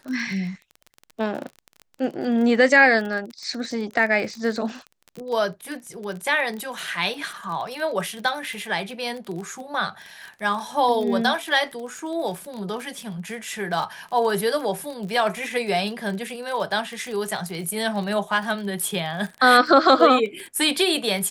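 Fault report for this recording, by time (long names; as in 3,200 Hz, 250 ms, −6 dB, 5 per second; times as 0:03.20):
surface crackle 31 per second −29 dBFS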